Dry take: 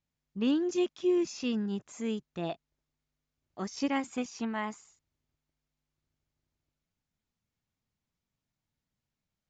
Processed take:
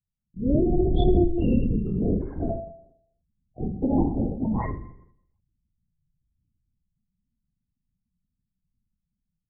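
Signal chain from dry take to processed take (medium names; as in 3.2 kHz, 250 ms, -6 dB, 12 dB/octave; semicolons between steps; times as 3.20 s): partial rectifier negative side -7 dB; 2.20–2.43 s: spectral replace 780–2300 Hz both; level rider gain up to 8.5 dB; loudest bins only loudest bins 8; distance through air 320 m; flutter echo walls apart 7 m, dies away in 0.71 s; LPC vocoder at 8 kHz whisper; 0.63–2.26 s: swell ahead of each attack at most 23 dB/s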